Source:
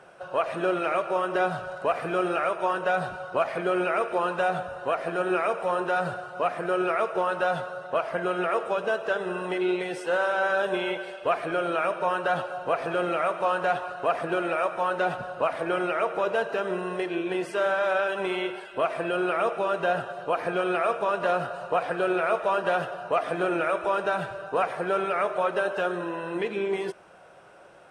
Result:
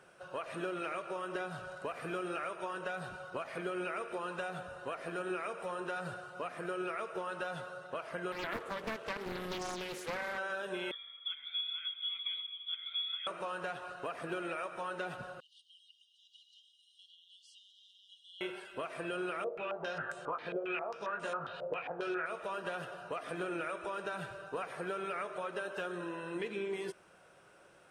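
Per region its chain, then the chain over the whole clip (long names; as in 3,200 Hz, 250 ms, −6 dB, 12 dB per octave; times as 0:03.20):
0:08.32–0:10.38: high-pass filter 120 Hz 6 dB per octave + highs frequency-modulated by the lows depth 0.96 ms
0:10.91–0:13.27: formant filter e + voice inversion scrambler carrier 3,900 Hz
0:15.40–0:18.41: downward compressor 3 to 1, threshold −29 dBFS + linear-phase brick-wall high-pass 2,800 Hz + high-frequency loss of the air 130 metres
0:19.44–0:22.26: double-tracking delay 19 ms −5.5 dB + low-pass on a step sequencer 7.4 Hz 550–7,800 Hz
whole clip: high-shelf EQ 6,400 Hz +7.5 dB; downward compressor, threshold −25 dBFS; parametric band 720 Hz −6.5 dB 0.93 octaves; level −7 dB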